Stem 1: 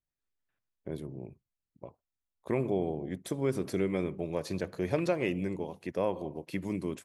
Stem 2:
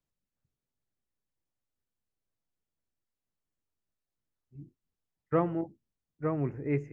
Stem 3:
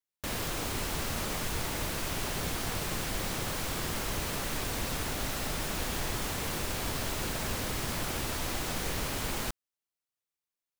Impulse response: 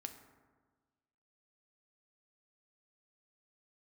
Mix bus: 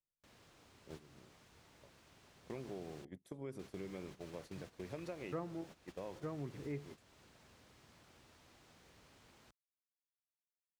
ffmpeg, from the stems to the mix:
-filter_complex "[0:a]volume=0.398[s0];[1:a]volume=0.794,asplit=2[s1][s2];[2:a]acrossover=split=7800[s3][s4];[s4]acompressor=threshold=0.00251:ratio=4:attack=1:release=60[s5];[s3][s5]amix=inputs=2:normalize=0,highpass=63,volume=0.15,asplit=3[s6][s7][s8];[s6]atrim=end=3.05,asetpts=PTS-STARTPTS,afade=t=out:st=3.046:d=0.004:c=hsin[s9];[s7]atrim=start=3.05:end=3.59,asetpts=PTS-STARTPTS,volume=0[s10];[s8]atrim=start=3.59,asetpts=PTS-STARTPTS,afade=t=in:d=0.004:c=hsin[s11];[s9][s10][s11]concat=n=3:v=0:a=1[s12];[s2]apad=whole_len=310683[s13];[s0][s13]sidechaincompress=threshold=0.00501:ratio=8:attack=16:release=124[s14];[s14][s1][s12]amix=inputs=3:normalize=0,agate=range=0.224:threshold=0.00708:ratio=16:detection=peak,acompressor=threshold=0.00355:ratio=2"

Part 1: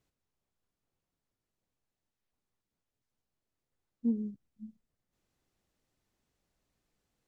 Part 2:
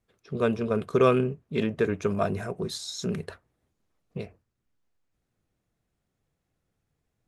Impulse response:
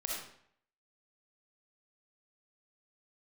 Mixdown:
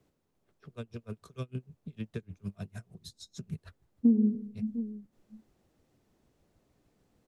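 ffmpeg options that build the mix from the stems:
-filter_complex "[0:a]equalizer=f=290:w=0.31:g=11.5,volume=1.06,asplit=3[s0][s1][s2];[s1]volume=0.355[s3];[s2]volume=0.15[s4];[1:a]asubboost=boost=4.5:cutoff=210,acrossover=split=160|3000[s5][s6][s7];[s6]acompressor=threshold=0.00562:ratio=2[s8];[s5][s8][s7]amix=inputs=3:normalize=0,aeval=exprs='val(0)*pow(10,-38*(0.5-0.5*cos(2*PI*6.6*n/s))/20)':c=same,adelay=350,volume=0.841[s9];[2:a]atrim=start_sample=2205[s10];[s3][s10]afir=irnorm=-1:irlink=0[s11];[s4]aecho=0:1:700:1[s12];[s0][s9][s11][s12]amix=inputs=4:normalize=0,acrossover=split=140|480[s13][s14][s15];[s13]acompressor=threshold=0.00501:ratio=4[s16];[s14]acompressor=threshold=0.0891:ratio=4[s17];[s15]acompressor=threshold=0.00447:ratio=4[s18];[s16][s17][s18]amix=inputs=3:normalize=0"

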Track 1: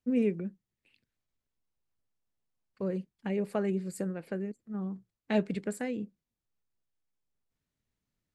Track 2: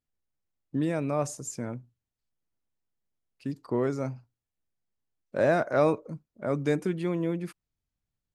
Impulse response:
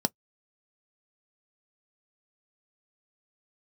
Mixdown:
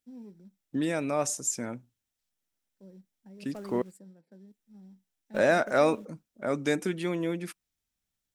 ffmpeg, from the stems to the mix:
-filter_complex "[0:a]acrusher=bits=4:mode=log:mix=0:aa=0.000001,asoftclip=type=tanh:threshold=0.0794,volume=0.251,asplit=2[s0][s1];[s1]volume=0.0841[s2];[1:a]tiltshelf=f=1300:g=-6,volume=1.19,asplit=3[s3][s4][s5];[s3]atrim=end=3.82,asetpts=PTS-STARTPTS,afade=t=out:st=3.816:d=0.004:c=hsin[s6];[s4]atrim=start=3.82:end=4.47,asetpts=PTS-STARTPTS,volume=0[s7];[s5]atrim=start=4.47,asetpts=PTS-STARTPTS,afade=t=in:d=0.004:c=hsin[s8];[s6][s7][s8]concat=n=3:v=0:a=1,asplit=3[s9][s10][s11];[s10]volume=0.0944[s12];[s11]apad=whole_len=368196[s13];[s0][s13]sidechaingate=range=0.0562:threshold=0.00355:ratio=16:detection=peak[s14];[2:a]atrim=start_sample=2205[s15];[s2][s12]amix=inputs=2:normalize=0[s16];[s16][s15]afir=irnorm=-1:irlink=0[s17];[s14][s9][s17]amix=inputs=3:normalize=0"

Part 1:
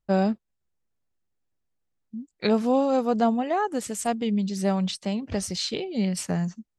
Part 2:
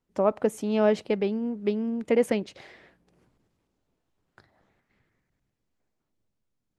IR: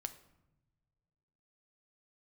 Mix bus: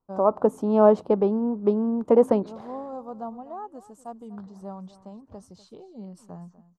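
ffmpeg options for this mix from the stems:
-filter_complex "[0:a]highshelf=f=6500:g=5,volume=0.168,asplit=2[s0][s1];[s1]volume=0.141[s2];[1:a]bandreject=f=86.94:t=h:w=4,bandreject=f=173.88:t=h:w=4,bandreject=f=260.82:t=h:w=4,bandreject=f=347.76:t=h:w=4,dynaudnorm=f=130:g=5:m=2,volume=0.794,asplit=2[s3][s4];[s4]apad=whole_len=299147[s5];[s0][s5]sidechaincompress=threshold=0.0562:ratio=8:attack=16:release=487[s6];[s2]aecho=0:1:246:1[s7];[s6][s3][s7]amix=inputs=3:normalize=0,highshelf=f=1500:t=q:w=3:g=-12"

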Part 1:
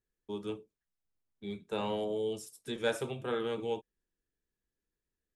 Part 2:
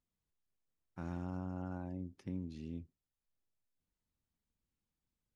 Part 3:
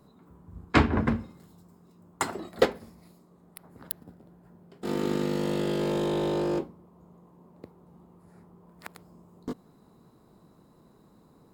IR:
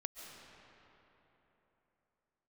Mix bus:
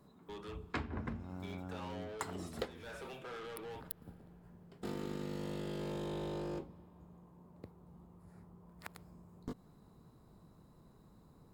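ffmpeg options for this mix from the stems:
-filter_complex "[0:a]equalizer=f=1500:t=o:w=2.7:g=7,acompressor=threshold=0.0112:ratio=2,asplit=2[s0][s1];[s1]highpass=f=720:p=1,volume=22.4,asoftclip=type=tanh:threshold=0.0668[s2];[s0][s2]amix=inputs=2:normalize=0,lowpass=f=3300:p=1,volume=0.501,volume=0.141,asplit=2[s3][s4];[s4]volume=0.282[s5];[1:a]volume=0.75[s6];[2:a]asubboost=boost=2.5:cutoff=150,volume=0.531,asplit=2[s7][s8];[s8]volume=0.0708[s9];[3:a]atrim=start_sample=2205[s10];[s5][s9]amix=inputs=2:normalize=0[s11];[s11][s10]afir=irnorm=-1:irlink=0[s12];[s3][s6][s7][s12]amix=inputs=4:normalize=0,acompressor=threshold=0.0126:ratio=5"

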